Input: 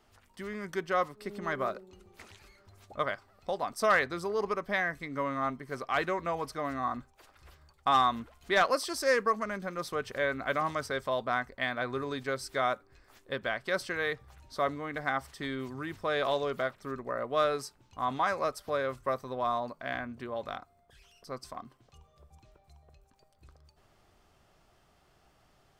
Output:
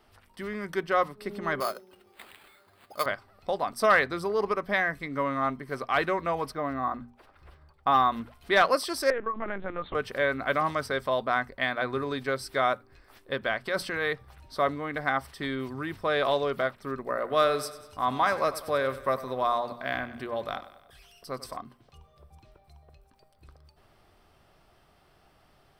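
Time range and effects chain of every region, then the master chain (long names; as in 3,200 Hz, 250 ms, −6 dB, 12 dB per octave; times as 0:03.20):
0:01.60–0:03.06: high-pass filter 550 Hz 6 dB per octave + sample-rate reduction 5,700 Hz
0:06.52–0:08.12: high-shelf EQ 2,600 Hz −9.5 dB + linearly interpolated sample-rate reduction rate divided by 2×
0:09.10–0:09.95: downward compressor 5 to 1, threshold −30 dBFS + linear-prediction vocoder at 8 kHz pitch kept
0:13.65–0:14.13: notch filter 5,600 Hz, Q 28 + transient designer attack −6 dB, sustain +3 dB
0:17.00–0:21.57: high-shelf EQ 5,500 Hz +7 dB + repeating echo 96 ms, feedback 54%, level −15 dB
whole clip: parametric band 6,800 Hz −11.5 dB 0.31 octaves; mains-hum notches 60/120/180/240 Hz; level +4 dB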